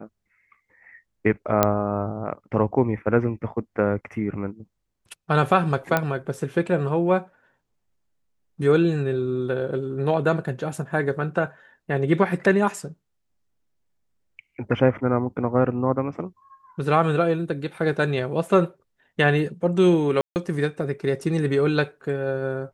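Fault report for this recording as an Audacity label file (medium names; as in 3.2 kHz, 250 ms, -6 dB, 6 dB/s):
1.630000	1.630000	pop -2 dBFS
5.970000	5.970000	pop -7 dBFS
20.210000	20.360000	dropout 149 ms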